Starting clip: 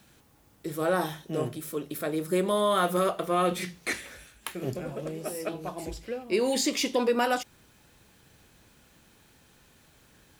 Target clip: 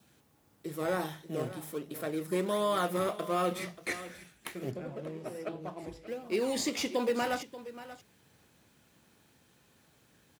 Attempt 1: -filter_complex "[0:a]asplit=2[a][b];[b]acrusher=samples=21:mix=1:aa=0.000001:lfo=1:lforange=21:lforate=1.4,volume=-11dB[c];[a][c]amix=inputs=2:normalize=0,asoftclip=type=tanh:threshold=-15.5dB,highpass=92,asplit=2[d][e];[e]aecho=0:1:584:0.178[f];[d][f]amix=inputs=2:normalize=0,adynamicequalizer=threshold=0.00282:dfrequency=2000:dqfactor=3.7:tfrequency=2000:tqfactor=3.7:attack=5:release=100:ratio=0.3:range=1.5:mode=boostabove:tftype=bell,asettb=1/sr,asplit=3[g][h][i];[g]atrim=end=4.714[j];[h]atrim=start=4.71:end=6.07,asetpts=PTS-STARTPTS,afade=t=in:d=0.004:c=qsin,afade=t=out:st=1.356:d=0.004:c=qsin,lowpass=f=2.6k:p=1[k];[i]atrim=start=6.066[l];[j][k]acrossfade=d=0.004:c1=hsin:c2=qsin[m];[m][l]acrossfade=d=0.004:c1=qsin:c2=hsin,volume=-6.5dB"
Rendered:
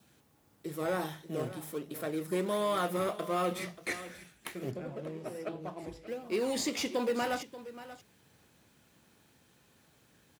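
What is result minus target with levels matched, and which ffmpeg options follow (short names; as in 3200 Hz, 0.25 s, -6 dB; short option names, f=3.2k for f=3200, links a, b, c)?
soft clip: distortion +17 dB
-filter_complex "[0:a]asplit=2[a][b];[b]acrusher=samples=21:mix=1:aa=0.000001:lfo=1:lforange=21:lforate=1.4,volume=-11dB[c];[a][c]amix=inputs=2:normalize=0,asoftclip=type=tanh:threshold=-6dB,highpass=92,asplit=2[d][e];[e]aecho=0:1:584:0.178[f];[d][f]amix=inputs=2:normalize=0,adynamicequalizer=threshold=0.00282:dfrequency=2000:dqfactor=3.7:tfrequency=2000:tqfactor=3.7:attack=5:release=100:ratio=0.3:range=1.5:mode=boostabove:tftype=bell,asettb=1/sr,asplit=3[g][h][i];[g]atrim=end=4.714[j];[h]atrim=start=4.71:end=6.07,asetpts=PTS-STARTPTS,afade=t=in:d=0.004:c=qsin,afade=t=out:st=1.356:d=0.004:c=qsin,lowpass=f=2.6k:p=1[k];[i]atrim=start=6.066[l];[j][k]acrossfade=d=0.004:c1=hsin:c2=qsin[m];[m][l]acrossfade=d=0.004:c1=qsin:c2=hsin,volume=-6.5dB"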